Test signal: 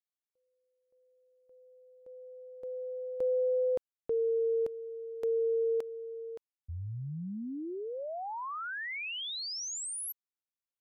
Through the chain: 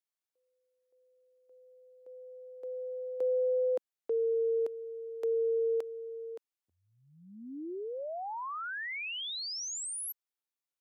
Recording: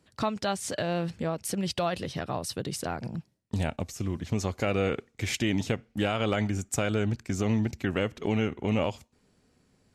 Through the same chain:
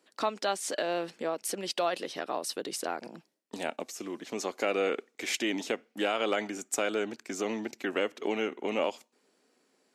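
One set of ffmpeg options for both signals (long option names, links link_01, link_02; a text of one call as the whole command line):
ffmpeg -i in.wav -af "highpass=frequency=290:width=0.5412,highpass=frequency=290:width=1.3066" out.wav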